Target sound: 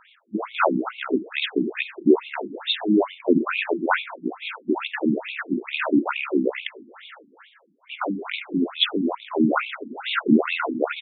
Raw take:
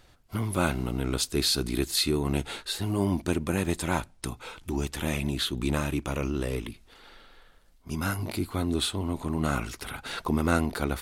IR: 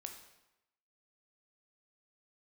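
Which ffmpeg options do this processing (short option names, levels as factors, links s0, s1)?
-filter_complex "[0:a]aresample=8000,aresample=44100,asplit=2[s0][s1];[1:a]atrim=start_sample=2205,lowshelf=f=120:g=-12[s2];[s1][s2]afir=irnorm=-1:irlink=0,volume=2[s3];[s0][s3]amix=inputs=2:normalize=0,afftfilt=real='re*between(b*sr/1024,240*pow(3100/240,0.5+0.5*sin(2*PI*2.3*pts/sr))/1.41,240*pow(3100/240,0.5+0.5*sin(2*PI*2.3*pts/sr))*1.41)':imag='im*between(b*sr/1024,240*pow(3100/240,0.5+0.5*sin(2*PI*2.3*pts/sr))/1.41,240*pow(3100/240,0.5+0.5*sin(2*PI*2.3*pts/sr))*1.41)':win_size=1024:overlap=0.75,volume=2.51"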